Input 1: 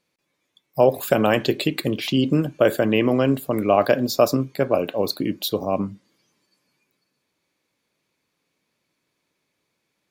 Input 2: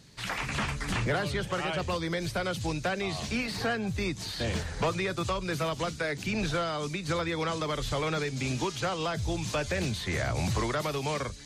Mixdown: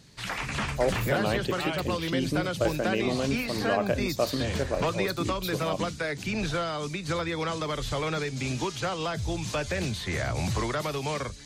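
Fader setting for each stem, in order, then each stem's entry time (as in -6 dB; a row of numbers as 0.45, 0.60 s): -10.0, +0.5 dB; 0.00, 0.00 s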